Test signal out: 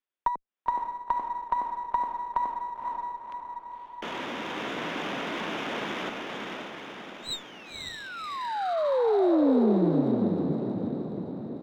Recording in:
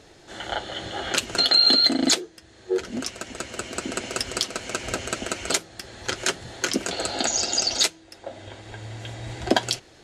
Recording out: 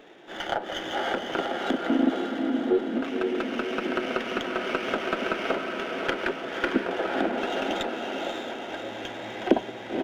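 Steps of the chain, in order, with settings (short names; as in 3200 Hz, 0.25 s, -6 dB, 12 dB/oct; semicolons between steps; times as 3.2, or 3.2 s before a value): downsampling 8000 Hz; HPF 200 Hz 24 dB/oct; treble ducked by the level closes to 520 Hz, closed at -22 dBFS; diffused feedback echo 0.538 s, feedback 57%, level -3 dB; running maximum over 3 samples; gain +2 dB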